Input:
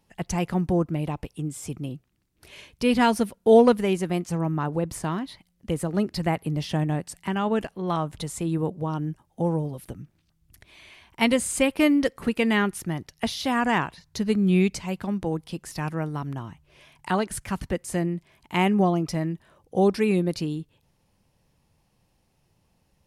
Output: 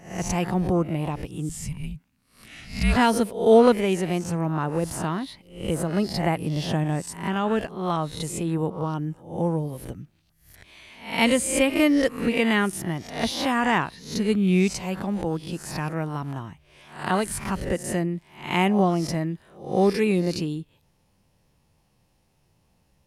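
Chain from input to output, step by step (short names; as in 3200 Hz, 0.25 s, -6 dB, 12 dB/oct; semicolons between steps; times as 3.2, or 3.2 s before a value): spectral swells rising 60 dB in 0.47 s; 1.49–2.96 frequency shift -300 Hz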